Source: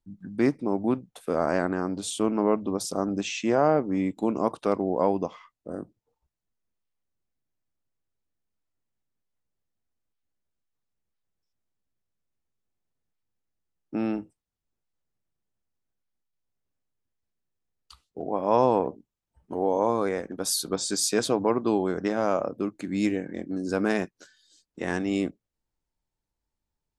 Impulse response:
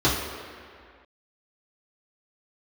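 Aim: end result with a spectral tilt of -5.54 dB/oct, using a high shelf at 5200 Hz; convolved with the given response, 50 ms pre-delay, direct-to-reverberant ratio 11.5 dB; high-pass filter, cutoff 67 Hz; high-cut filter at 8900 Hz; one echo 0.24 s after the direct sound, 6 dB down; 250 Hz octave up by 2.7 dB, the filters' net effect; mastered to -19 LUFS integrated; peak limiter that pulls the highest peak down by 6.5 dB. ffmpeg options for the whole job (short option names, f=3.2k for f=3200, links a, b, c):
-filter_complex "[0:a]highpass=67,lowpass=8.9k,equalizer=f=250:t=o:g=3.5,highshelf=f=5.2k:g=-4,alimiter=limit=-14.5dB:level=0:latency=1,aecho=1:1:240:0.501,asplit=2[a][b];[1:a]atrim=start_sample=2205,adelay=50[c];[b][c]afir=irnorm=-1:irlink=0,volume=-29dB[d];[a][d]amix=inputs=2:normalize=0,volume=7dB"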